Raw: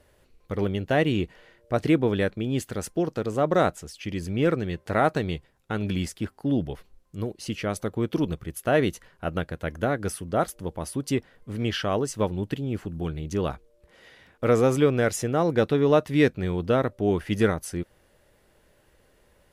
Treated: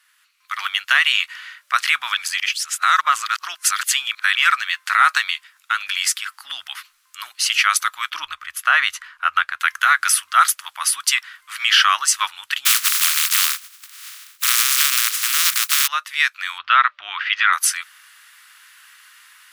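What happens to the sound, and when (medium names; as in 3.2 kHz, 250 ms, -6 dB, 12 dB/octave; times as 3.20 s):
2.17–4.35 s: reverse
5.30–6.50 s: compression 2:1, threshold -30 dBFS
8.10–9.60 s: tilt EQ -3.5 dB/octave
12.65–15.86 s: spectral contrast reduction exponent 0.11
16.58–17.53 s: low-pass 3.6 kHz 24 dB/octave
whole clip: elliptic high-pass 1.2 kHz, stop band 60 dB; level rider gain up to 13 dB; peak limiter -11.5 dBFS; trim +8 dB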